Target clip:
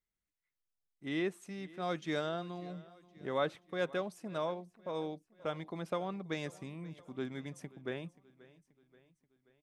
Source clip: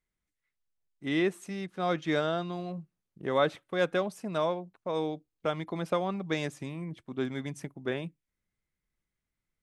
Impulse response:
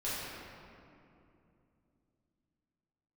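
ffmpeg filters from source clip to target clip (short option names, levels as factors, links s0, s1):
-filter_complex "[0:a]asettb=1/sr,asplit=3[s0][s1][s2];[s0]atrim=end=1.824[s3];[s1]atrim=start=1.82:end=2.29,asetpts=PTS-STARTPTS,afade=t=in:d=0.004:c=qsin,afade=t=out:st=0.466:d=0.004:c=qsin,bass=f=250:g=0,treble=f=4000:g=5[s4];[s2]atrim=start=2.286[s5];[s3][s4]acrossfade=d=0.004:c1=hsin:c2=qsin[s6];[s6][s5]acrossfade=d=0.004:c1=qsin:c2=hsin,aecho=1:1:531|1062|1593|2124:0.0891|0.0481|0.026|0.014,volume=0.447"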